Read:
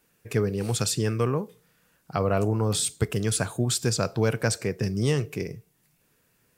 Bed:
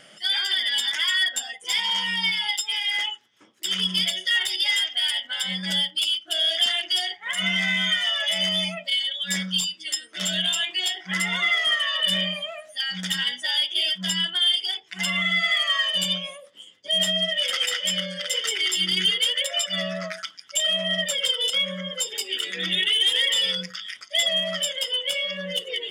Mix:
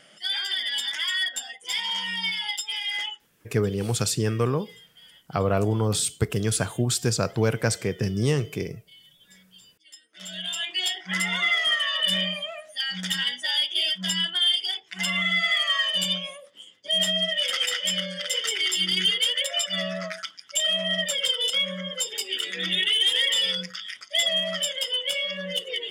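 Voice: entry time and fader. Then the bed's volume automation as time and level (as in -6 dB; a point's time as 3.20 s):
3.20 s, +1.0 dB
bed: 3.20 s -4 dB
3.82 s -28 dB
9.63 s -28 dB
10.76 s -1 dB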